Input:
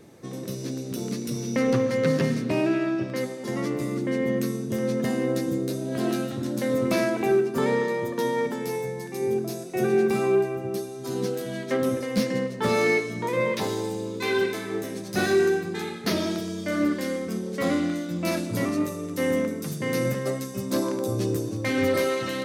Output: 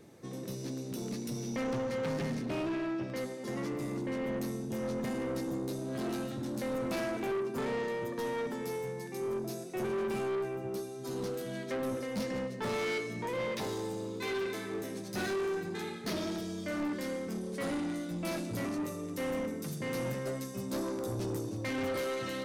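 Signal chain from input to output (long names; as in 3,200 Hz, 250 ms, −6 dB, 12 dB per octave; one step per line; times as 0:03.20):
soft clipping −25 dBFS, distortion −10 dB
0:17.41–0:18.28: parametric band 9,500 Hz +8.5 dB 0.22 octaves
level −5.5 dB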